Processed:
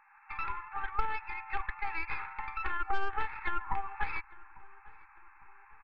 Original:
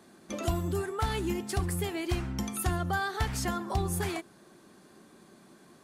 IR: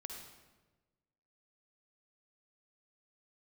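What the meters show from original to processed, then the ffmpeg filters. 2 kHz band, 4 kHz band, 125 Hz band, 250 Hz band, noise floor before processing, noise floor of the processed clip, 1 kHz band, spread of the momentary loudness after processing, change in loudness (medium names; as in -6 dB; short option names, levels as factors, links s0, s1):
+1.0 dB, -13.0 dB, -19.0 dB, -21.5 dB, -58 dBFS, -59 dBFS, +0.5 dB, 21 LU, -5.0 dB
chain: -filter_complex "[0:a]highshelf=f=2100:g=7.5,bandreject=f=1800:w=30,afftfilt=real='re*between(b*sr/4096,780,2700)':imag='im*between(b*sr/4096,780,2700)':win_size=4096:overlap=0.75,aeval=exprs='0.1*(cos(1*acos(clip(val(0)/0.1,-1,1)))-cos(1*PI/2))+0.00224*(cos(3*acos(clip(val(0)/0.1,-1,1)))-cos(3*PI/2))+0.0178*(cos(4*acos(clip(val(0)/0.1,-1,1)))-cos(4*PI/2))+0.00251*(cos(6*acos(clip(val(0)/0.1,-1,1)))-cos(6*PI/2))':c=same,aecho=1:1:2.3:0.42,acompressor=threshold=0.0158:ratio=5,aemphasis=mode=reproduction:type=bsi,asplit=2[s0][s1];[s1]adelay=850,lowpass=f=1700:p=1,volume=0.0891,asplit=2[s2][s3];[s3]adelay=850,lowpass=f=1700:p=1,volume=0.51,asplit=2[s4][s5];[s5]adelay=850,lowpass=f=1700:p=1,volume=0.51,asplit=2[s6][s7];[s7]adelay=850,lowpass=f=1700:p=1,volume=0.51[s8];[s0][s2][s4][s6][s8]amix=inputs=5:normalize=0,dynaudnorm=f=130:g=3:m=1.78"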